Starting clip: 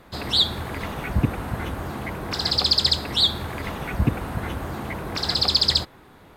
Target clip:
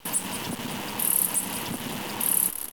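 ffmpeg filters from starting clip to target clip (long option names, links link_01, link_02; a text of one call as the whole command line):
ffmpeg -i in.wav -filter_complex "[0:a]equalizer=frequency=100:width_type=o:width=0.33:gain=11,equalizer=frequency=400:width_type=o:width=0.33:gain=10,equalizer=frequency=1250:width_type=o:width=0.33:gain=10,acompressor=threshold=-29dB:ratio=2.5,asplit=2[link_01][link_02];[link_02]asplit=6[link_03][link_04][link_05][link_06][link_07][link_08];[link_03]adelay=430,afreqshift=52,volume=-13.5dB[link_09];[link_04]adelay=860,afreqshift=104,volume=-18.7dB[link_10];[link_05]adelay=1290,afreqshift=156,volume=-23.9dB[link_11];[link_06]adelay=1720,afreqshift=208,volume=-29.1dB[link_12];[link_07]adelay=2150,afreqshift=260,volume=-34.3dB[link_13];[link_08]adelay=2580,afreqshift=312,volume=-39.5dB[link_14];[link_09][link_10][link_11][link_12][link_13][link_14]amix=inputs=6:normalize=0[link_15];[link_01][link_15]amix=inputs=2:normalize=0,asoftclip=type=tanh:threshold=-21dB,aexciter=amount=6.4:drive=5.4:freq=4400,aresample=16000,acrusher=bits=6:dc=4:mix=0:aa=0.000001,aresample=44100,asetrate=103194,aresample=44100,volume=-2.5dB" out.wav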